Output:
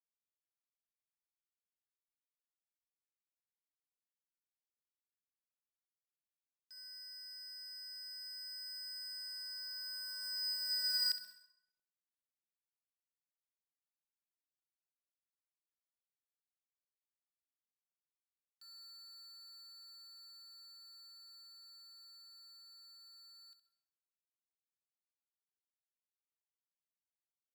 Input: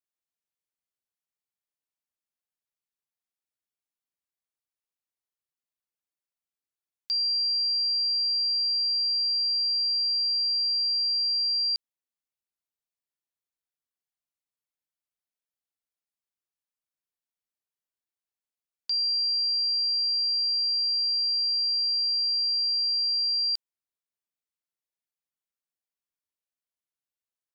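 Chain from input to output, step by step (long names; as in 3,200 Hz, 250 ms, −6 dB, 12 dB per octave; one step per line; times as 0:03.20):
running median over 25 samples
source passing by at 0:11.34, 19 m/s, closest 6.4 metres
on a send: repeating echo 65 ms, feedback 46%, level −11 dB
on the sum: dense smooth reverb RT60 0.76 s, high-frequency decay 0.7×, pre-delay 110 ms, DRR 14 dB
level +9 dB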